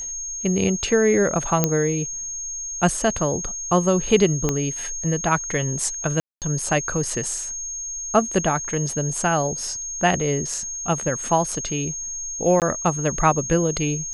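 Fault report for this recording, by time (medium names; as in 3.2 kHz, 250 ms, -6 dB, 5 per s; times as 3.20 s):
whine 6.5 kHz -28 dBFS
1.64 s: pop -3 dBFS
4.49 s: pop -8 dBFS
6.20–6.42 s: dropout 218 ms
12.60–12.62 s: dropout 18 ms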